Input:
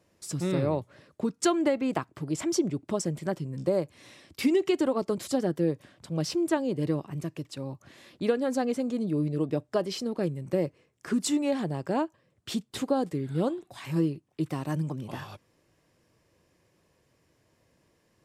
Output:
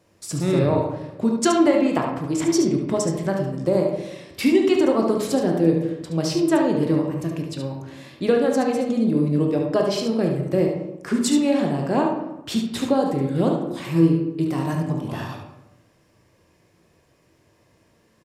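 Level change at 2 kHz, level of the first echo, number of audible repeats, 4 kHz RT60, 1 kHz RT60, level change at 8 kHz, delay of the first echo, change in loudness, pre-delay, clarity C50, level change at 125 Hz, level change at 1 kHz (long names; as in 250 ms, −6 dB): +7.5 dB, −6.5 dB, 1, 0.55 s, 0.90 s, +6.0 dB, 72 ms, +8.0 dB, 16 ms, 3.0 dB, +7.5 dB, +8.5 dB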